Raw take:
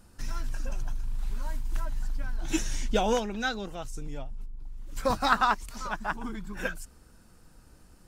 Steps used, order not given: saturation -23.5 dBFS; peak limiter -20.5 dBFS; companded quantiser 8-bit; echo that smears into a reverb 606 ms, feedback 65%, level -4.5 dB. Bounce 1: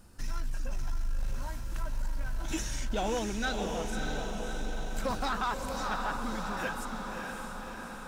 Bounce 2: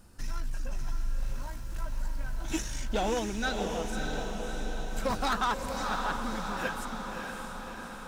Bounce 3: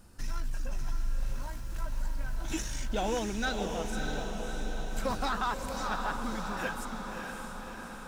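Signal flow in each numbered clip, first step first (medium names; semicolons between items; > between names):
peak limiter > echo that smears into a reverb > companded quantiser > saturation; companded quantiser > saturation > echo that smears into a reverb > peak limiter; peak limiter > saturation > companded quantiser > echo that smears into a reverb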